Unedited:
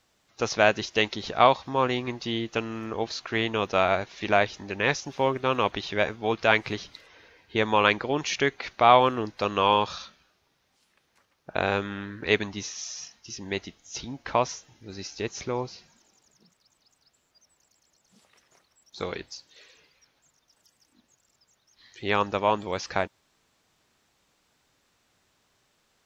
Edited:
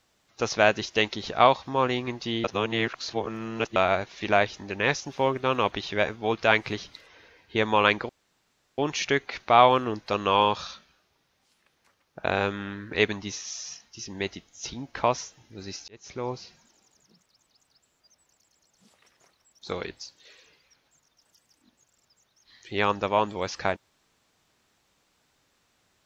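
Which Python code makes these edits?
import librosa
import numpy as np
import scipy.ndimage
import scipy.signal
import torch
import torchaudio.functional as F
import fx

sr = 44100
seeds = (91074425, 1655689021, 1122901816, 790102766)

y = fx.edit(x, sr, fx.reverse_span(start_s=2.44, length_s=1.32),
    fx.insert_room_tone(at_s=8.09, length_s=0.69),
    fx.fade_in_span(start_s=15.19, length_s=0.48), tone=tone)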